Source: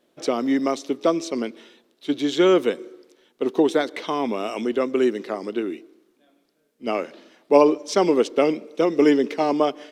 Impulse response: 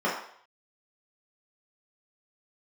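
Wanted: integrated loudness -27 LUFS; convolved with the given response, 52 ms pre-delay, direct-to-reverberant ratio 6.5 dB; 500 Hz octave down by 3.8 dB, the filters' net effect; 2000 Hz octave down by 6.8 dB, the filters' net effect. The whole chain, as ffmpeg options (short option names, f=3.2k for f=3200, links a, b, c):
-filter_complex "[0:a]equalizer=f=500:t=o:g=-4.5,equalizer=f=2k:t=o:g=-8.5,asplit=2[a][b];[1:a]atrim=start_sample=2205,adelay=52[c];[b][c]afir=irnorm=-1:irlink=0,volume=-20dB[d];[a][d]amix=inputs=2:normalize=0,volume=-3dB"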